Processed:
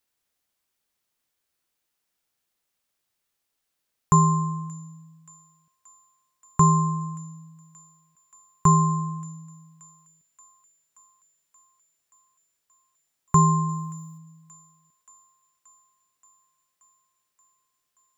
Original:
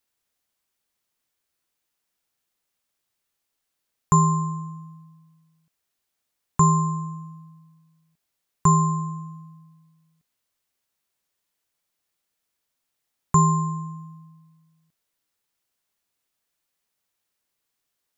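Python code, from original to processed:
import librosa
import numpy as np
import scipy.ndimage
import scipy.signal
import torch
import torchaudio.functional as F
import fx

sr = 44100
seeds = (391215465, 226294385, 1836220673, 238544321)

y = fx.high_shelf(x, sr, hz=4200.0, db=10.0, at=(13.69, 14.18))
y = fx.echo_wet_highpass(y, sr, ms=578, feedback_pct=73, hz=2600.0, wet_db=-18.0)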